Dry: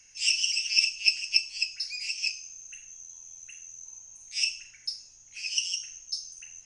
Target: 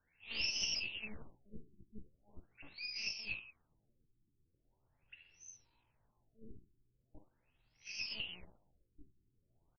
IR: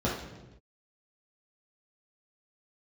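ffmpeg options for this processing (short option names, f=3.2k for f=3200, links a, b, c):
-filter_complex "[0:a]asplit=2[a][b];[1:a]atrim=start_sample=2205,asetrate=28665,aresample=44100[c];[b][c]afir=irnorm=-1:irlink=0,volume=-30.5dB[d];[a][d]amix=inputs=2:normalize=0,aeval=exprs='(tanh(15.8*val(0)+0.4)-tanh(0.4))/15.8':c=same,atempo=0.68,afftfilt=real='re*lt(b*sr/1024,400*pow(6300/400,0.5+0.5*sin(2*PI*0.41*pts/sr)))':imag='im*lt(b*sr/1024,400*pow(6300/400,0.5+0.5*sin(2*PI*0.41*pts/sr)))':win_size=1024:overlap=0.75,volume=-5.5dB"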